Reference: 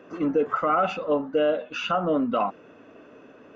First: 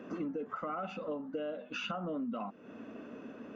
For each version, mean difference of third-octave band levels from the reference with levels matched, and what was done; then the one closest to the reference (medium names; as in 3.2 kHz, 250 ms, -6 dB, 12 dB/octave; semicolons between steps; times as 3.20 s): 5.0 dB: peaking EQ 220 Hz +12 dB 0.53 oct; compression 6:1, threshold -35 dBFS, peak gain reduction 17 dB; trim -1.5 dB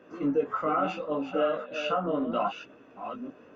3.0 dB: chunks repeated in reverse 547 ms, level -8 dB; chorus voices 2, 0.73 Hz, delay 18 ms, depth 3.5 ms; trim -2 dB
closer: second